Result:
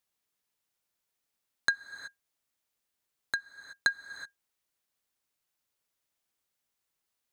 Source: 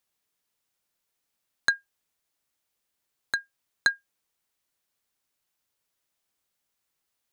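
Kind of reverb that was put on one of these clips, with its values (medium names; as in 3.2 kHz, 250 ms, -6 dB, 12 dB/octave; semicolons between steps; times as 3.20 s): gated-style reverb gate 400 ms rising, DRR 11.5 dB; trim -3.5 dB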